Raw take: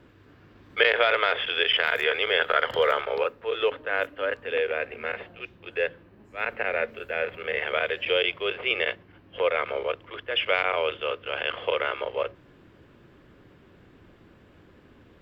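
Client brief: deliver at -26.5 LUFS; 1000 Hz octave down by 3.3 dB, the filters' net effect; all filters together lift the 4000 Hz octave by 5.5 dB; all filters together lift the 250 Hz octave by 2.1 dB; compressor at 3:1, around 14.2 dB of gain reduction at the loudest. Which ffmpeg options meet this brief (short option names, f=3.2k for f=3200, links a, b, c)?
-af "equalizer=f=250:t=o:g=4,equalizer=f=1k:t=o:g=-6,equalizer=f=4k:t=o:g=8.5,acompressor=threshold=-35dB:ratio=3,volume=9dB"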